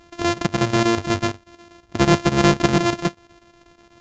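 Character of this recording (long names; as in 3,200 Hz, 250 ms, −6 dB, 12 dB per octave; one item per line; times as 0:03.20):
a buzz of ramps at a fixed pitch in blocks of 128 samples
chopped level 8.2 Hz, depth 65%, duty 80%
SBC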